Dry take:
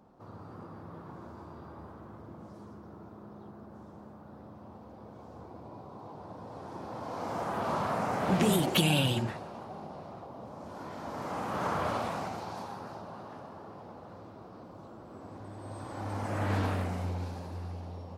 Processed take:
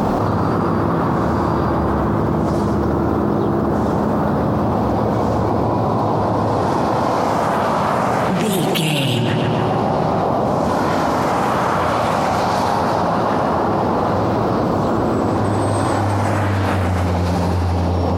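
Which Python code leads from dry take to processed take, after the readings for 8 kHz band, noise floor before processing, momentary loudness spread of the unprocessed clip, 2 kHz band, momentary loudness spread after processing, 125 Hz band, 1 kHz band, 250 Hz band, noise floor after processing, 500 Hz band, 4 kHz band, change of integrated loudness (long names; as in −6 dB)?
+11.0 dB, −50 dBFS, 20 LU, +15.0 dB, 1 LU, +17.5 dB, +19.5 dB, +18.5 dB, −18 dBFS, +20.0 dB, +10.5 dB, +15.5 dB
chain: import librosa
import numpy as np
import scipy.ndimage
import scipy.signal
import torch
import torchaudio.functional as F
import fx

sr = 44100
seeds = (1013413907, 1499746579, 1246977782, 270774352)

y = fx.echo_filtered(x, sr, ms=141, feedback_pct=67, hz=3100.0, wet_db=-8.5)
y = fx.env_flatten(y, sr, amount_pct=100)
y = y * librosa.db_to_amplitude(4.5)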